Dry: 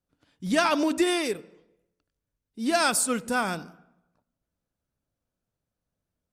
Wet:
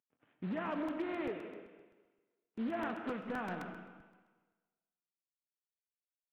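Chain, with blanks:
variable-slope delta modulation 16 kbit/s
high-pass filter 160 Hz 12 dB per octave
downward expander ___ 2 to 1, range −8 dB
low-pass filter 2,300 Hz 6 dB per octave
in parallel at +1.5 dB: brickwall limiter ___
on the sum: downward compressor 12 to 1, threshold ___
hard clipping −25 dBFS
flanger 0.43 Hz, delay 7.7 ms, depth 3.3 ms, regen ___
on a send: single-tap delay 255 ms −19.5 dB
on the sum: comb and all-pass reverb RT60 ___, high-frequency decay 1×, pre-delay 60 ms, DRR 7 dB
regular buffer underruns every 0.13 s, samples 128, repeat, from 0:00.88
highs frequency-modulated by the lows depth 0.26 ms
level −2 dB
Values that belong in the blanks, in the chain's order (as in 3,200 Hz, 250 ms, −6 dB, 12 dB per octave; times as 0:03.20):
−56 dBFS, −24 dBFS, −29 dBFS, +82%, 1.3 s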